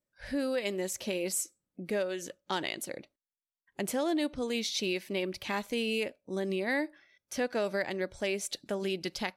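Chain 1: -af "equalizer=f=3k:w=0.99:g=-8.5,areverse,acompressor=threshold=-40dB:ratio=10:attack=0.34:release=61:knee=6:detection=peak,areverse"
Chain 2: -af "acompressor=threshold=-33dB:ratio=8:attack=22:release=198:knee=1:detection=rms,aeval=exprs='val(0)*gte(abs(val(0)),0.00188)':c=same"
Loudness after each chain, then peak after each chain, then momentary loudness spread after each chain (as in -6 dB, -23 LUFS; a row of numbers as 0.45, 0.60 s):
-46.5, -38.0 LUFS; -35.0, -19.0 dBFS; 5, 5 LU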